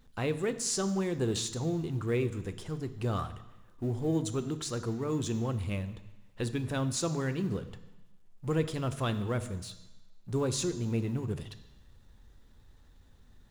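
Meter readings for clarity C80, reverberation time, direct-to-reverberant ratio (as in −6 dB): 15.5 dB, 1.0 s, 10.0 dB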